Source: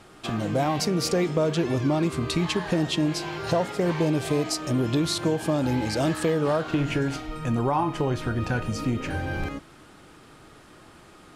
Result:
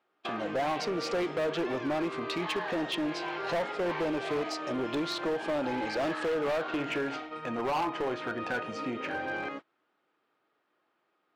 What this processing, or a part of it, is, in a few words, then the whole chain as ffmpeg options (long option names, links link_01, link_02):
walkie-talkie: -af "highpass=400,lowpass=3000,asoftclip=type=hard:threshold=-26.5dB,agate=range=-23dB:threshold=-40dB:ratio=16:detection=peak"